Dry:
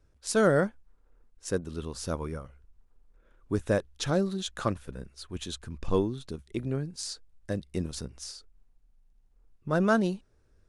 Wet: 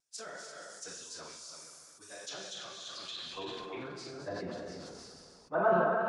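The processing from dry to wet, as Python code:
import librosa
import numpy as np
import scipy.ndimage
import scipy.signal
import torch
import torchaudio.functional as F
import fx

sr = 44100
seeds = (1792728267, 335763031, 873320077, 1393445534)

y = fx.rev_plate(x, sr, seeds[0], rt60_s=1.9, hf_ratio=1.0, predelay_ms=0, drr_db=2.0)
y = fx.rider(y, sr, range_db=3, speed_s=2.0)
y = fx.echo_multitap(y, sr, ms=(61, 74, 403, 488, 578), db=(-7.5, -16.5, -12.0, -8.5, -6.0))
y = fx.filter_sweep_bandpass(y, sr, from_hz=6900.0, to_hz=960.0, start_s=4.52, end_s=7.56, q=1.2)
y = fx.stretch_vocoder_free(y, sr, factor=0.57)
y = fx.vibrato(y, sr, rate_hz=0.69, depth_cents=14.0)
y = fx.high_shelf(y, sr, hz=6500.0, db=6.5)
y = fx.env_lowpass_down(y, sr, base_hz=2300.0, full_db=-35.0)
y = fx.peak_eq(y, sr, hz=720.0, db=7.0, octaves=0.25)
y = fx.sustainer(y, sr, db_per_s=22.0)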